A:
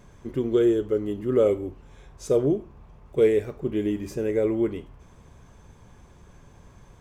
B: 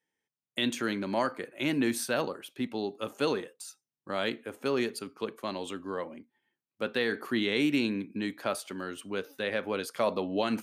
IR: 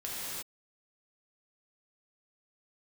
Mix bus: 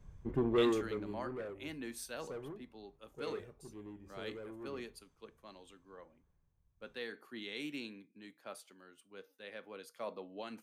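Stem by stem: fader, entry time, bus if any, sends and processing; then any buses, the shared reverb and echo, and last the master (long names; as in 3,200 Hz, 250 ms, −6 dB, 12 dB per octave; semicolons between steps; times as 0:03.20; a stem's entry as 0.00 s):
+2.5 dB, 0.00 s, no send, soft clipping −24 dBFS, distortion −8 dB; automatic ducking −15 dB, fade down 1.55 s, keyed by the second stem
−9.5 dB, 0.00 s, no send, low-shelf EQ 170 Hz −5 dB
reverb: not used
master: tuned comb filter 160 Hz, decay 0.24 s, harmonics odd, mix 50%; multiband upward and downward expander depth 70%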